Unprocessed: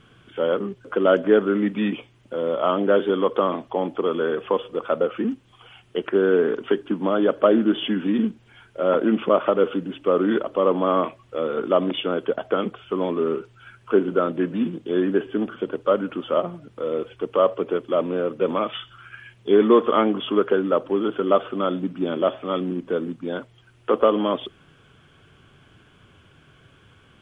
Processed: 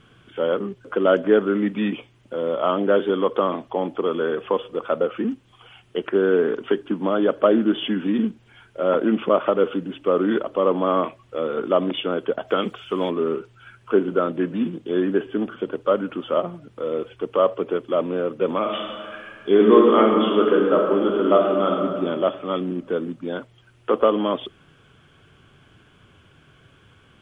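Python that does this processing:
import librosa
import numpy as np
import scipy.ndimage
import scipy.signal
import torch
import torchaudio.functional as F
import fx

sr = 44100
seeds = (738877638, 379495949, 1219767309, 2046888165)

y = fx.high_shelf(x, sr, hz=fx.line((12.47, 2700.0), (13.09, 2400.0)), db=11.5, at=(12.47, 13.09), fade=0.02)
y = fx.reverb_throw(y, sr, start_s=18.59, length_s=3.12, rt60_s=2.0, drr_db=0.5)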